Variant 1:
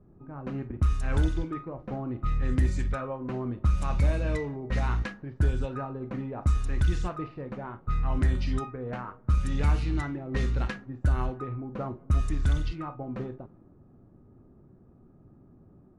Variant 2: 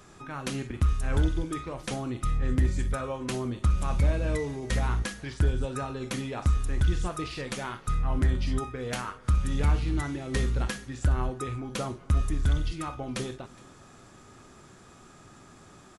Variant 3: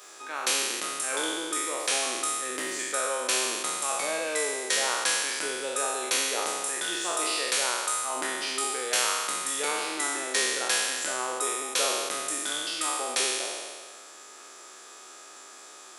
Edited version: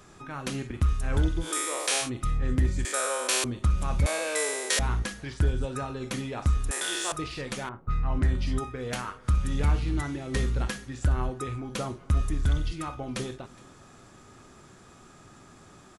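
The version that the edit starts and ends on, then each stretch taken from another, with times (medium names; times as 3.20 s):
2
1.45–2.05 s: from 3, crossfade 0.10 s
2.85–3.44 s: from 3
4.06–4.79 s: from 3
6.71–7.12 s: from 3
7.69–8.38 s: from 1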